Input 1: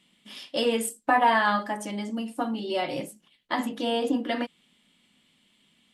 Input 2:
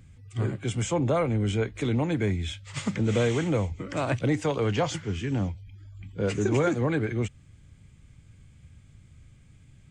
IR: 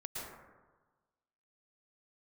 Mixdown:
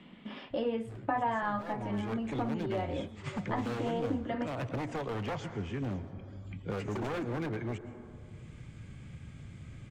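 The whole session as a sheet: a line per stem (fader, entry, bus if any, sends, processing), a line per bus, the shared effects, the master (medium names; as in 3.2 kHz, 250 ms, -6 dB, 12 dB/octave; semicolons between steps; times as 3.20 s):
-5.0 dB, 0.00 s, no send, echo send -21 dB, Bessel low-pass 1.3 kHz, order 2
1.54 s -20.5 dB -> 2.24 s -10.5 dB, 0.50 s, send -11 dB, no echo send, low-pass 2.8 kHz 6 dB/octave; wavefolder -22.5 dBFS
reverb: on, RT60 1.3 s, pre-delay 103 ms
echo: delay 589 ms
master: three bands compressed up and down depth 70%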